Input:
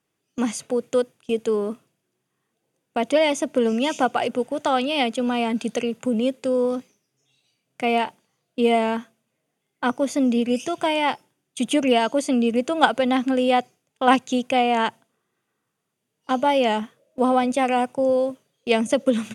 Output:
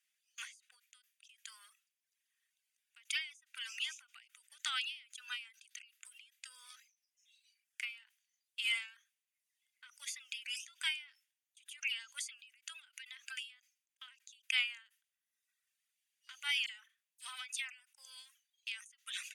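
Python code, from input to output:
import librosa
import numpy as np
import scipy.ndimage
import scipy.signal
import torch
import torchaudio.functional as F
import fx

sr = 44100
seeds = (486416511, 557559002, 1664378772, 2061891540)

y = fx.dispersion(x, sr, late='lows', ms=43.0, hz=2800.0, at=(16.66, 17.8))
y = scipy.signal.sosfilt(scipy.signal.butter(6, 1700.0, 'highpass', fs=sr, output='sos'), y)
y = fx.dereverb_blind(y, sr, rt60_s=0.7)
y = fx.end_taper(y, sr, db_per_s=140.0)
y = F.gain(torch.from_numpy(y), -1.5).numpy()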